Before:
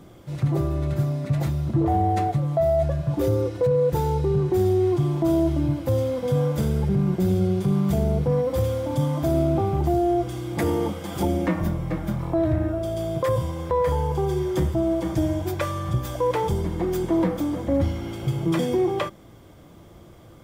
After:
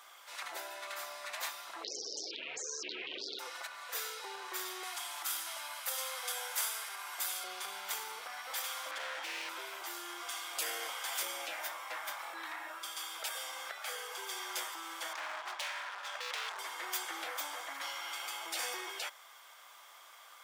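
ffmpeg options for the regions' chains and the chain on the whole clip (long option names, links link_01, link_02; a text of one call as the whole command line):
ffmpeg -i in.wav -filter_complex "[0:a]asettb=1/sr,asplit=3[link_01][link_02][link_03];[link_01]atrim=end=1.844[link_04];[link_02]atrim=start=1.84:end=3.39,asetpts=PTS-STARTPTS,afade=type=in:duration=0.004:curve=qsin,afade=type=out:start_time=1.546:duration=0.004:curve=qsin,lowpass=frequency=1900:width=0.5412,lowpass=frequency=1900:width=1.3066,acontrast=51,aeval=exprs='0.422*sin(PI/2*5.01*val(0)/0.422)':channel_layout=same[link_05];[link_03]atrim=start=3.386[link_06];[link_04][link_05]acrossfade=duration=0.004:curve1=hsin:curve2=qsin[link_07];[link_07][link_06]acrossfade=duration=0.004:curve1=qsin:curve2=hsin,asettb=1/sr,asplit=3[link_08][link_09][link_10];[link_08]atrim=end=4.834[link_11];[link_09]atrim=start=4.83:end=7.44,asetpts=PTS-STARTPTS,afade=type=in:duration=0.004:curve=qsin,afade=type=out:start_time=2.606:duration=0.004:curve=qsin,highpass=690,equalizer=frequency=11000:width_type=o:width=1.2:gain=8[link_12];[link_10]atrim=start=7.436[link_13];[link_11][link_12]acrossfade=duration=0.004:curve1=hsin:curve2=qsin[link_14];[link_14][link_13]acrossfade=duration=0.004:curve1=qsin:curve2=hsin,asettb=1/sr,asplit=3[link_15][link_16][link_17];[link_15]atrim=end=8.914[link_18];[link_16]atrim=start=8.91:end=9.49,asetpts=PTS-STARTPTS,afade=type=in:duration=0.004:curve=qsin,afade=type=out:start_time=0.576:duration=0.004:curve=qsin,aemphasis=mode=reproduction:type=75fm,aecho=1:1:5.9:0.77,atrim=end_sample=25578,volume=19.5dB,asoftclip=hard,volume=-19.5dB[link_19];[link_17]atrim=start=9.486[link_20];[link_18][link_19]acrossfade=duration=0.004:curve1=hsin:curve2=qsin[link_21];[link_21][link_20]acrossfade=duration=0.004:curve1=qsin:curve2=hsin,asettb=1/sr,asplit=3[link_22][link_23][link_24];[link_22]atrim=end=15.134[link_25];[link_23]atrim=start=15.13:end=16.59,asetpts=PTS-STARTPTS,afade=type=in:duration=0.004:curve=qsin,afade=type=out:start_time=1.456:duration=0.004:curve=qsin,adynamicsmooth=sensitivity=5:basefreq=2800,asoftclip=type=hard:threshold=-29.5dB[link_26];[link_24]atrim=start=16.586[link_27];[link_25][link_26]acrossfade=duration=0.004:curve1=hsin:curve2=qsin[link_28];[link_28][link_27]acrossfade=duration=0.004:curve1=qsin:curve2=hsin,highpass=frequency=1000:width=0.5412,highpass=frequency=1000:width=1.3066,afftfilt=real='re*lt(hypot(re,im),0.0316)':imag='im*lt(hypot(re,im),0.0316)':win_size=1024:overlap=0.75,volume=4dB" out.wav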